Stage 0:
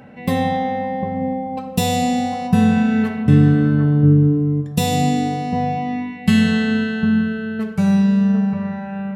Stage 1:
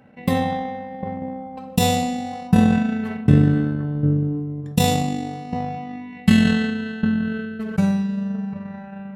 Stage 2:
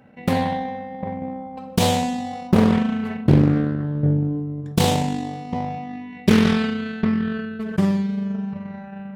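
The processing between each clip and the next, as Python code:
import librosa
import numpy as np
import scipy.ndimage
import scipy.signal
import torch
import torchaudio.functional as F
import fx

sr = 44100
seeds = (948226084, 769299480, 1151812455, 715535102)

y1 = fx.transient(x, sr, attack_db=11, sustain_db=-8)
y1 = fx.sustainer(y1, sr, db_per_s=29.0)
y1 = y1 * 10.0 ** (-10.5 / 20.0)
y2 = fx.doppler_dist(y1, sr, depth_ms=0.99)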